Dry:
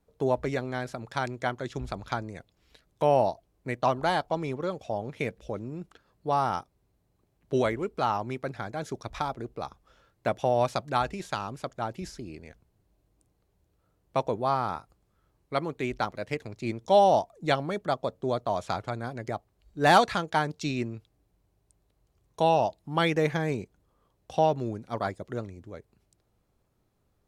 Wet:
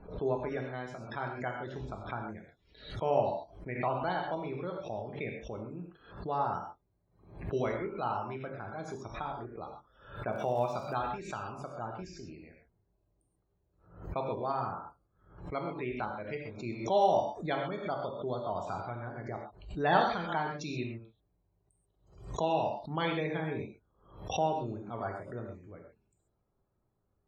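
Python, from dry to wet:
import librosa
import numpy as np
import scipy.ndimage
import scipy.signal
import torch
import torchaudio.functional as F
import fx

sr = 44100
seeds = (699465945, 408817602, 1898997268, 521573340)

y = fx.spec_topn(x, sr, count=64)
y = fx.dmg_crackle(y, sr, seeds[0], per_s=42.0, level_db=-37.0, at=(10.32, 10.93), fade=0.02)
y = fx.rev_gated(y, sr, seeds[1], gate_ms=160, shape='flat', drr_db=1.0)
y = fx.pre_swell(y, sr, db_per_s=99.0)
y = F.gain(torch.from_numpy(y), -8.5).numpy()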